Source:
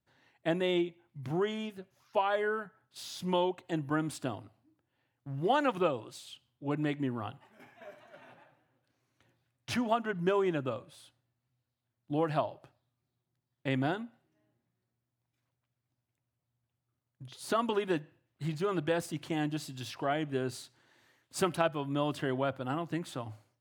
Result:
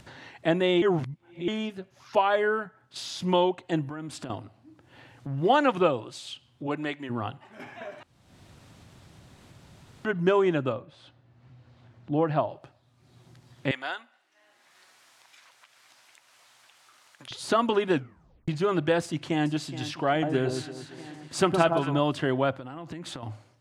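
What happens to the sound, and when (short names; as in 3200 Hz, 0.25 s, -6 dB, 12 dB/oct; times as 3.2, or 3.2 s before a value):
0.82–1.48 reverse
3.88–4.3 compressor 4:1, threshold -42 dBFS
6.66–7.09 HPF 350 Hz -> 1300 Hz 6 dB/oct
8.03–10.05 room tone
10.72–12.5 tape spacing loss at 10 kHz 22 dB
13.71–17.31 HPF 1100 Hz
17.93 tape stop 0.55 s
19.03–19.51 echo throw 0.42 s, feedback 65%, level -13 dB
20.11–21.99 echo with dull and thin repeats by turns 0.114 s, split 1200 Hz, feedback 52%, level -4.5 dB
22.51–23.23 compressor 16:1, threshold -41 dBFS
whole clip: LPF 7800 Hz 12 dB/oct; upward compressor, threshold -40 dBFS; gain +6.5 dB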